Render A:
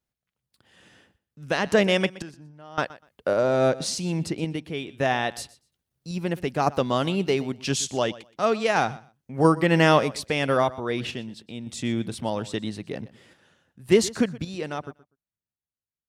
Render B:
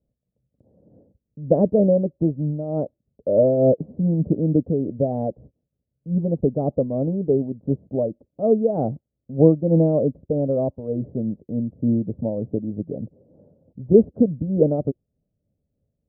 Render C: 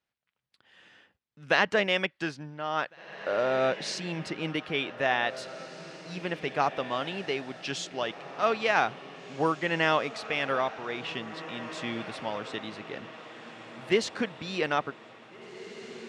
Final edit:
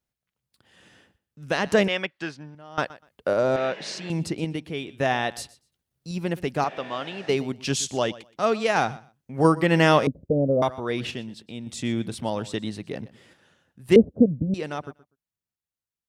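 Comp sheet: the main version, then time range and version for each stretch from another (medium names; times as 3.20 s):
A
1.88–2.55 s: from C
3.56–4.10 s: from C
6.64–7.29 s: from C
10.07–10.62 s: from B
13.96–14.54 s: from B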